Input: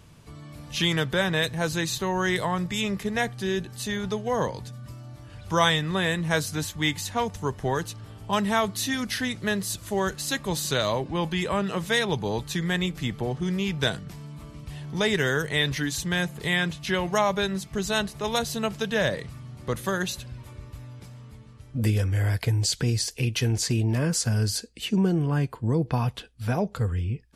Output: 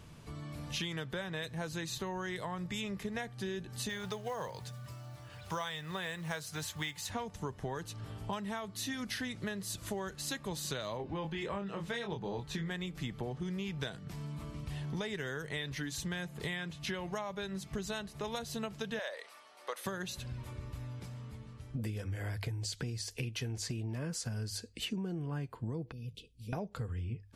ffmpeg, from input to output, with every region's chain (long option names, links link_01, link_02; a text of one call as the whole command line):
ffmpeg -i in.wav -filter_complex "[0:a]asettb=1/sr,asplit=3[link_01][link_02][link_03];[link_01]atrim=end=3.894[link_04];[link_02]atrim=start=3.89:end=7.1,asetpts=PTS-STARTPTS,afade=type=in:duration=0.004:curve=qsin,afade=type=out:start_time=3.206:duration=0.004:curve=qsin,highpass=110,equalizer=frequency=260:width=1.2:gain=-11.5,acrusher=bits=5:mode=log:mix=0:aa=0.000001[link_05];[link_03]atrim=start=7.096[link_06];[link_04][link_05]acrossfade=duration=0.004:curve1=hsin:curve2=qsin[link_07];[link_07][link_06]acrossfade=duration=0.004:curve1=qsin:curve2=hsin,asettb=1/sr,asplit=3[link_08][link_09][link_10];[link_08]atrim=end=10.974[link_11];[link_09]atrim=start=10.97:end=12.71,asetpts=PTS-STARTPTS,afade=type=in:duration=0.004:curve=qsin,afade=type=out:start_time=1.736:duration=0.004:curve=qsin,lowpass=frequency=3600:poles=1,asplit=2[link_12][link_13];[link_13]adelay=25,volume=-5dB[link_14];[link_12][link_14]amix=inputs=2:normalize=0,atrim=end_sample=76734[link_15];[link_10]atrim=start=12.706[link_16];[link_11][link_15]acrossfade=duration=0.004:curve1=hsin:curve2=qsin[link_17];[link_17][link_16]acrossfade=duration=0.004:curve1=qsin:curve2=hsin,asettb=1/sr,asplit=3[link_18][link_19][link_20];[link_18]atrim=end=18.994[link_21];[link_19]atrim=start=18.99:end=19.86,asetpts=PTS-STARTPTS,afade=type=in:duration=0.004:curve=qsin,afade=type=out:start_time=0.866:duration=0.004:curve=qsin,highpass=frequency=550:width=0.5412,highpass=frequency=550:width=1.3066,bandreject=frequency=7000:width=9.2[link_22];[link_20]atrim=start=19.856[link_23];[link_21][link_22]acrossfade=duration=0.004:curve1=hsin:curve2=qsin[link_24];[link_24][link_23]acrossfade=duration=0.004:curve1=qsin:curve2=hsin,asettb=1/sr,asplit=3[link_25][link_26][link_27];[link_25]atrim=end=25.924[link_28];[link_26]atrim=start=25.92:end=26.53,asetpts=PTS-STARTPTS,afade=type=in:duration=0.004:curve=qsin,afade=type=out:start_time=0.606:duration=0.004:curve=qsin,bandreject=frequency=50:width_type=h:width=6,bandreject=frequency=100:width_type=h:width=6,bandreject=frequency=150:width_type=h:width=6,acompressor=threshold=-60dB:ratio=1.5:attack=3.2:release=140:knee=1:detection=peak,asuperstop=centerf=1100:order=12:qfactor=0.57[link_29];[link_27]atrim=start=26.526[link_30];[link_28][link_29]acrossfade=duration=0.004:curve1=hsin:curve2=qsin[link_31];[link_31][link_30]acrossfade=duration=0.004:curve1=qsin:curve2=hsin,highshelf=frequency=5900:gain=-3.5,bandreject=frequency=50:width_type=h:width=6,bandreject=frequency=100:width_type=h:width=6,acompressor=threshold=-34dB:ratio=10,volume=-1dB" out.wav